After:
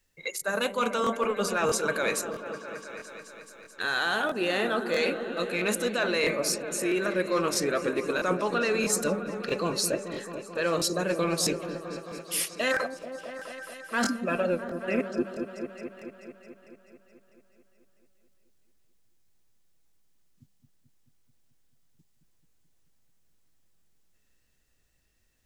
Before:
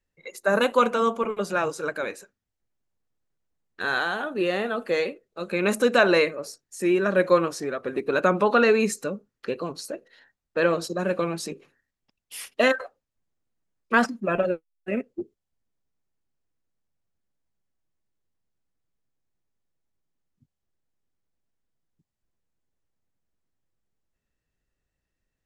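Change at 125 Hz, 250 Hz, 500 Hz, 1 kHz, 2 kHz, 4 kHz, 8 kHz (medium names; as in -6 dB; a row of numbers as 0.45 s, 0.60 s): -2.0 dB, -3.0 dB, -4.5 dB, -4.0 dB, -2.5 dB, +2.0 dB, +8.0 dB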